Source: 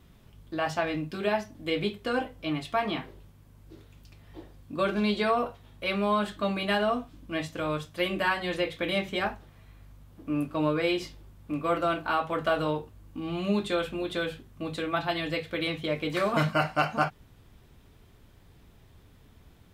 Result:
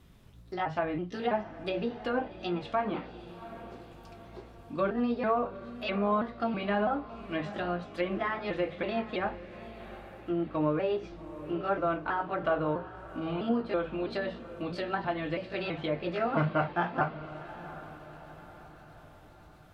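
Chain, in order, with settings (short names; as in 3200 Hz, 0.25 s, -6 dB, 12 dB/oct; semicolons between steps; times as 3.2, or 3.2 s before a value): trilling pitch shifter +2.5 st, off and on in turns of 0.327 s; treble ducked by the level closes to 1500 Hz, closed at -25.5 dBFS; diffused feedback echo 0.755 s, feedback 50%, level -14 dB; gain -1.5 dB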